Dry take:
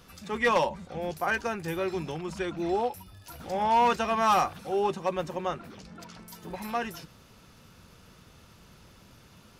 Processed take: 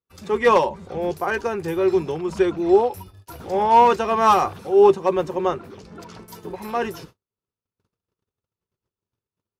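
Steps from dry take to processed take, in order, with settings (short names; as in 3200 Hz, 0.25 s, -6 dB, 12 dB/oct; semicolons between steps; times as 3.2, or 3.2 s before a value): gate -48 dBFS, range -45 dB; fifteen-band EQ 100 Hz +8 dB, 400 Hz +12 dB, 1000 Hz +5 dB; noise-modulated level, depth 60%; gain +5 dB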